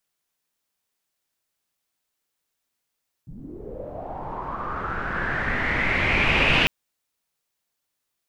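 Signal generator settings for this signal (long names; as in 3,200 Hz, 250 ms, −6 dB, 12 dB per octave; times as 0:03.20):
filter sweep on noise pink, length 3.40 s lowpass, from 140 Hz, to 2,700 Hz, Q 5.8, linear, gain ramp +21 dB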